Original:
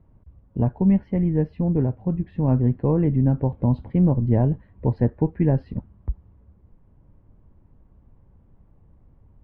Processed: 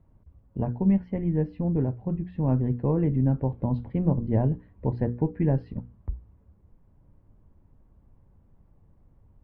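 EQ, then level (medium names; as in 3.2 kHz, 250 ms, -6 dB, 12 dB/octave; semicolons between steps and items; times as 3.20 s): hum notches 60/120/180/240/300/360/420/480 Hz; -3.5 dB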